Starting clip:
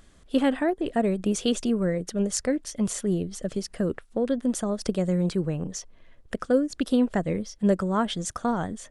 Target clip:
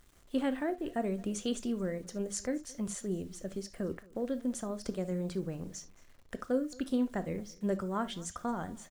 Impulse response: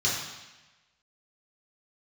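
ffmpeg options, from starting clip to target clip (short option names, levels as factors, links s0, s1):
-filter_complex "[0:a]acrusher=bits=8:mix=0:aa=0.000001,aecho=1:1:221:0.0668,asplit=2[s0][s1];[1:a]atrim=start_sample=2205,atrim=end_sample=3528[s2];[s1][s2]afir=irnorm=-1:irlink=0,volume=0.1[s3];[s0][s3]amix=inputs=2:normalize=0,volume=0.355"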